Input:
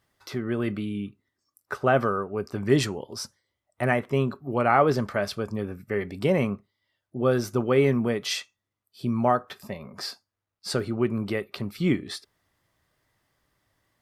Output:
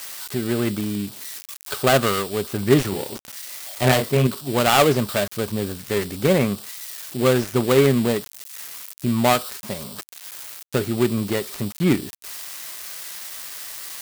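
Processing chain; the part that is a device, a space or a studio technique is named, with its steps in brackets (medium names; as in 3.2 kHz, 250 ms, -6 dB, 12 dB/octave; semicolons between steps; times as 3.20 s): 2.89–4.27 s: doubling 31 ms -2.5 dB; budget class-D amplifier (dead-time distortion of 0.23 ms; zero-crossing glitches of -22 dBFS); trim +5 dB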